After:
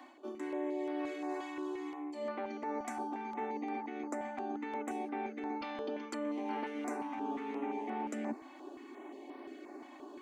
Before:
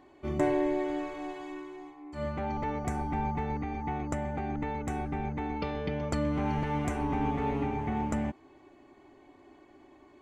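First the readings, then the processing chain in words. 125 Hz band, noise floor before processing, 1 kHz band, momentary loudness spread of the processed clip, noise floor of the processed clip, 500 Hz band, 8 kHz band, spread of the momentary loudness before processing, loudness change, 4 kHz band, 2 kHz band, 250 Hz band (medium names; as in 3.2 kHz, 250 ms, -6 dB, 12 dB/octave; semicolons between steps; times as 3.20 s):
under -25 dB, -58 dBFS, -5.5 dB, 11 LU, -53 dBFS, -5.5 dB, -4.5 dB, 9 LU, -7.5 dB, -4.5 dB, -5.0 dB, -6.0 dB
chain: steep high-pass 230 Hz 96 dB/octave; reverse; compression 6:1, threshold -44 dBFS, peak gain reduction 20 dB; reverse; step-sequenced notch 5.7 Hz 420–7100 Hz; trim +8.5 dB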